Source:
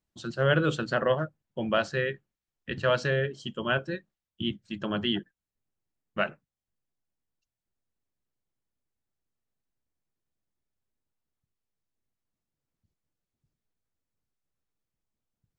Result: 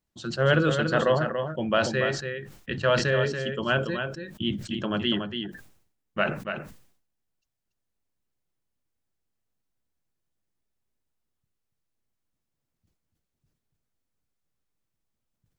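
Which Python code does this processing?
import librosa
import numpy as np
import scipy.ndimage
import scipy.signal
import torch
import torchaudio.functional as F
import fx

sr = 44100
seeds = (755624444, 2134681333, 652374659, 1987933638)

y = x + 10.0 ** (-7.0 / 20.0) * np.pad(x, (int(285 * sr / 1000.0), 0))[:len(x)]
y = fx.sustainer(y, sr, db_per_s=87.0)
y = F.gain(torch.from_numpy(y), 2.0).numpy()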